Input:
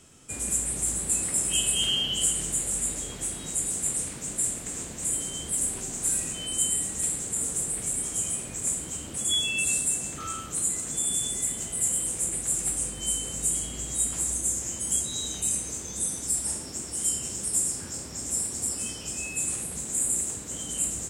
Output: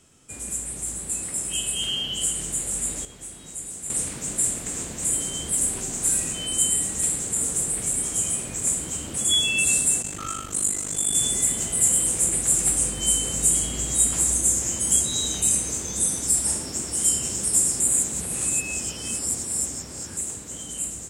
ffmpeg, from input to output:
-filter_complex "[0:a]asplit=3[a][b][c];[a]afade=t=out:st=10.02:d=0.02[d];[b]aeval=exprs='val(0)*sin(2*PI*25*n/s)':c=same,afade=t=in:st=10.02:d=0.02,afade=t=out:st=11.13:d=0.02[e];[c]afade=t=in:st=11.13:d=0.02[f];[d][e][f]amix=inputs=3:normalize=0,asplit=5[g][h][i][j][k];[g]atrim=end=3.052[l];[h]atrim=start=3.048:end=3.902,asetpts=PTS-STARTPTS,volume=-9.5dB[m];[i]atrim=start=3.898:end=17.802[n];[j]atrim=start=17.798:end=20.172,asetpts=PTS-STARTPTS,areverse[o];[k]atrim=start=20.168[p];[l][m]acrossfade=d=0.004:c1=hsin:c2=hsin[q];[q][n]acrossfade=d=0.004:c1=hsin:c2=hsin[r];[r][o]acrossfade=d=0.004:c1=hsin:c2=hsin[s];[s][p]acrossfade=d=0.004:c1=hsin:c2=hsin,dynaudnorm=f=870:g=7:m=11.5dB,volume=-3dB"

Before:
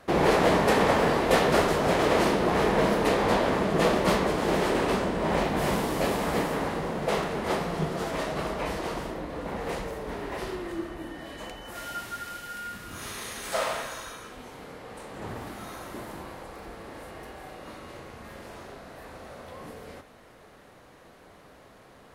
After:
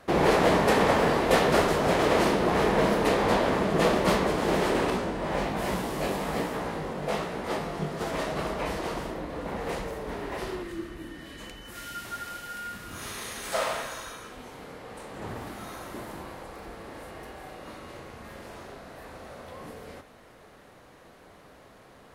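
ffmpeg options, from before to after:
-filter_complex "[0:a]asettb=1/sr,asplit=3[a][b][c];[a]atrim=end=4.904[d];[b]atrim=start=4.9:end=8.01,asetpts=PTS-STARTPTS,afade=t=in:d=0.004:c=qsin,afade=t=out:st=3.106:d=0.004:c=qsin,flanger=delay=16:depth=4.9:speed=1.2[e];[c]atrim=start=8.006[f];[d][e]acrossfade=d=0.004:c1=hsin:c2=qsin[g];[g][f]acrossfade=d=0.004:c1=qsin:c2=hsin,asettb=1/sr,asplit=3[h][i][j];[h]atrim=end=10.634[k];[i]atrim=start=10.63:end=12.05,asetpts=PTS-STARTPTS,afade=t=in:d=0.004:c=qsin,afade=t=out:st=1.416:d=0.004:c=qsin,equalizer=f=720:t=o:w=1.2:g=-10.5[l];[j]atrim=start=12.046[m];[k][l]acrossfade=d=0.004:c1=hsin:c2=qsin[n];[n][m]acrossfade=d=0.004:c1=qsin:c2=hsin"

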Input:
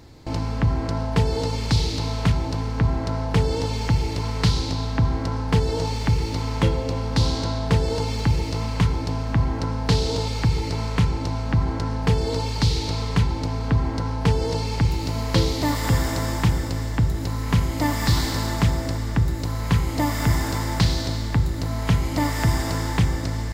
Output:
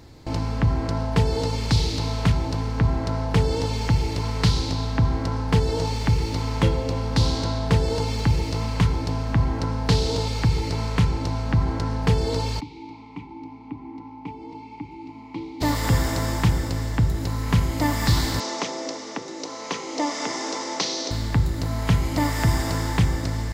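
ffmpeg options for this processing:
-filter_complex "[0:a]asplit=3[a][b][c];[a]afade=t=out:st=12.59:d=0.02[d];[b]asplit=3[e][f][g];[e]bandpass=f=300:t=q:w=8,volume=0dB[h];[f]bandpass=f=870:t=q:w=8,volume=-6dB[i];[g]bandpass=f=2.24k:t=q:w=8,volume=-9dB[j];[h][i][j]amix=inputs=3:normalize=0,afade=t=in:st=12.59:d=0.02,afade=t=out:st=15.6:d=0.02[k];[c]afade=t=in:st=15.6:d=0.02[l];[d][k][l]amix=inputs=3:normalize=0,asettb=1/sr,asplit=3[m][n][o];[m]atrim=end=18.404[p];[n]atrim=start=18.4:end=21.11,asetpts=PTS-STARTPTS,afade=t=in:d=0.004:c=qsin,afade=t=out:st=2.706:d=0.004:c=qsin,highpass=f=290:w=0.5412,highpass=f=290:w=1.3066,equalizer=f=490:t=q:w=4:g=4,equalizer=f=1.6k:t=q:w=4:g=-7,equalizer=f=6k:t=q:w=4:g=10,lowpass=f=6.8k:w=0.5412,lowpass=f=6.8k:w=1.3066[q];[o]atrim=start=21.106[r];[p][q]acrossfade=d=0.004:c1=hsin:c2=qsin[s];[s][r]acrossfade=d=0.004:c1=qsin:c2=hsin"

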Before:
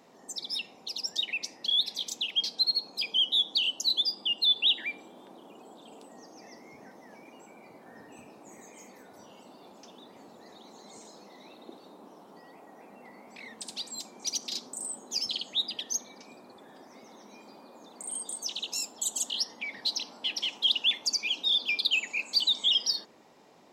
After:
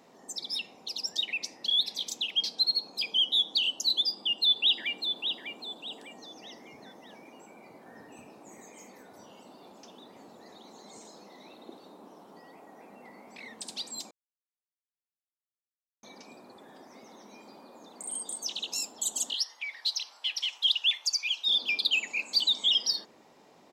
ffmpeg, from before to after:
-filter_complex "[0:a]asplit=2[a][b];[b]afade=t=in:st=4.12:d=0.01,afade=t=out:st=5.14:d=0.01,aecho=0:1:600|1200|1800|2400:0.421697|0.147594|0.0516578|0.0180802[c];[a][c]amix=inputs=2:normalize=0,asettb=1/sr,asplit=3[d][e][f];[d]atrim=end=19.344[g];[e]atrim=start=19.34:end=21.48,asetpts=PTS-STARTPTS,afade=t=in:d=0.004:c=qsin,afade=t=out:st=2.136:d=0.004:c=qsin,highpass=1.2k[h];[f]atrim=start=21.476[i];[g][h]acrossfade=d=0.004:c1=hsin:c2=qsin[j];[j][i]acrossfade=d=0.004:c1=qsin:c2=hsin,asplit=3[k][l][m];[k]atrim=end=14.11,asetpts=PTS-STARTPTS,afade=t=out:st=14.106:d=0.004:c=hsin[n];[l]atrim=start=14.11:end=16.03,asetpts=PTS-STARTPTS,volume=0[o];[m]atrim=start=16.03,asetpts=PTS-STARTPTS,afade=t=in:d=0.004:c=hsin[p];[n][o][p]concat=n=3:v=0:a=1"

